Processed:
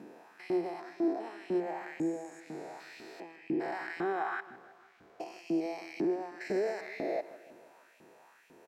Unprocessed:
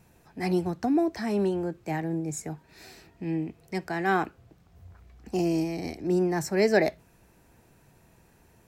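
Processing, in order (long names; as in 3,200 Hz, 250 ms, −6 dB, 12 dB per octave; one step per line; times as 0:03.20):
spectrum averaged block by block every 400 ms
low-pass filter 3,500 Hz 6 dB per octave
hum removal 60.87 Hz, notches 4
brickwall limiter −27.5 dBFS, peak gain reduction 9 dB
downward compressor 2 to 1, threshold −39 dBFS, peak gain reduction 5 dB
auto-filter high-pass saw up 2 Hz 240–2,700 Hz
repeating echo 156 ms, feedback 54%, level −17 dB
level +4 dB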